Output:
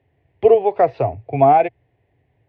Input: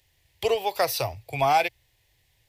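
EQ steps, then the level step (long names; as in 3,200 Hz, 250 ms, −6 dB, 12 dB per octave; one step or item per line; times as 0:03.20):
loudspeaker in its box 140–2,300 Hz, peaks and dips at 270 Hz +7 dB, 420 Hz +8 dB, 700 Hz +9 dB
low-shelf EQ 210 Hz +6 dB
low-shelf EQ 500 Hz +11.5 dB
−2.0 dB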